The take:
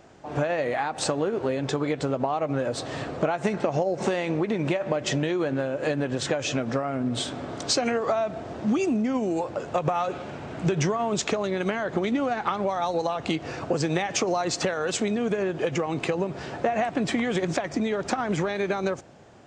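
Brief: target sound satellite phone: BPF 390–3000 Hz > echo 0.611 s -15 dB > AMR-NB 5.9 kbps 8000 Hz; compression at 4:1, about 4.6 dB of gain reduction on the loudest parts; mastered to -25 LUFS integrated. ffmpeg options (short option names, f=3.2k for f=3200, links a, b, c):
-af "acompressor=threshold=-26dB:ratio=4,highpass=390,lowpass=3k,aecho=1:1:611:0.178,volume=10dB" -ar 8000 -c:a libopencore_amrnb -b:a 5900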